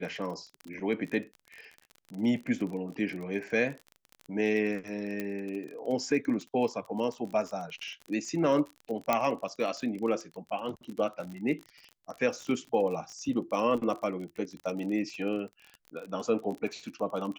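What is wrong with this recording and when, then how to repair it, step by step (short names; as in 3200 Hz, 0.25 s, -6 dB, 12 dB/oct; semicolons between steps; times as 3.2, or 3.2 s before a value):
crackle 34/s -36 dBFS
5.2 pop -20 dBFS
9.13 pop -11 dBFS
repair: de-click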